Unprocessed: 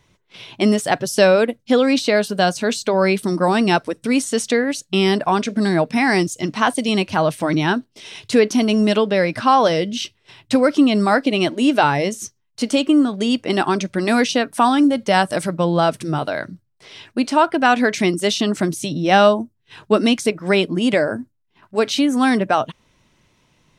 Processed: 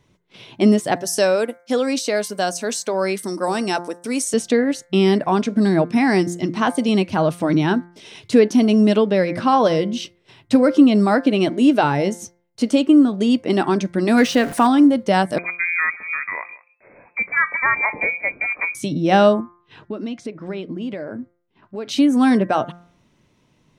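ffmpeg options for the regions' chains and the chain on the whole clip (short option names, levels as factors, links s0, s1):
-filter_complex "[0:a]asettb=1/sr,asplit=3[s0][s1][s2];[s0]atrim=end=0.964[s3];[s1]atrim=start=0.96:end=4.34,asetpts=PTS-STARTPTS,afade=t=in:d=0.004:c=qsin,afade=t=out:st=3.376:d=0.004:c=qsin,highpass=f=620:p=1,highshelf=f=4800:t=q:w=1.5:g=7,bandreject=f=7000:w=27[s4];[s2]atrim=start=4.336[s5];[s3][s4]acrossfade=d=0.004:c1=hsin:c2=qsin[s6];[s6][s5]acrossfade=d=0.004:c1=qsin:c2=hsin,asettb=1/sr,asplit=3[s7][s8][s9];[s7]atrim=end=14.174[s10];[s8]atrim=start=14.17:end=14.67,asetpts=PTS-STARTPTS,afade=t=in:d=0.004:c=qsin,afade=t=out:st=0.496:d=0.004:c=qsin,aeval=exprs='val(0)+0.5*0.0501*sgn(val(0))':c=same,equalizer=f=1800:t=o:w=0.82:g=5[s11];[s9]atrim=start=14.666[s12];[s10][s11]acrossfade=d=0.004:c1=hsin:c2=qsin[s13];[s13][s12]acrossfade=d=0.004:c1=qsin:c2=hsin,asettb=1/sr,asplit=3[s14][s15][s16];[s14]atrim=end=15.384[s17];[s15]atrim=start=15.38:end=18.75,asetpts=PTS-STARTPTS,afade=t=in:d=0.004:c=qsin,afade=t=out:st=3.366:d=0.004:c=qsin,aecho=1:1:181:0.0944,atrim=end_sample=148617,lowpass=f=2200:t=q:w=0.5098,lowpass=f=2200:t=q:w=0.6013,lowpass=f=2200:t=q:w=0.9,lowpass=f=2200:t=q:w=2.563,afreqshift=-2600[s18];[s16]atrim=start=18.746[s19];[s17][s18]acrossfade=d=0.004:c1=hsin:c2=qsin[s20];[s20][s19]acrossfade=d=0.004:c1=qsin:c2=hsin,asettb=1/sr,asplit=3[s21][s22][s23];[s21]atrim=end=19.404[s24];[s22]atrim=start=19.4:end=21.89,asetpts=PTS-STARTPTS,afade=t=in:d=0.004:c=qsin,afade=t=out:st=2.486:d=0.004:c=qsin,acompressor=threshold=0.0398:ratio=4:attack=3.2:release=140:knee=1:detection=peak,lowpass=4600[s25];[s23]atrim=start=21.886[s26];[s24][s25]acrossfade=d=0.004:c1=hsin:c2=qsin[s27];[s27][s26]acrossfade=d=0.004:c1=qsin:c2=hsin,equalizer=f=250:w=0.41:g=7.5,bandreject=f=174.4:t=h:w=4,bandreject=f=348.8:t=h:w=4,bandreject=f=523.2:t=h:w=4,bandreject=f=697.6:t=h:w=4,bandreject=f=872:t=h:w=4,bandreject=f=1046.4:t=h:w=4,bandreject=f=1220.8:t=h:w=4,bandreject=f=1395.2:t=h:w=4,bandreject=f=1569.6:t=h:w=4,bandreject=f=1744:t=h:w=4,bandreject=f=1918.4:t=h:w=4,bandreject=f=2092.8:t=h:w=4,bandreject=f=2267.2:t=h:w=4,volume=0.562"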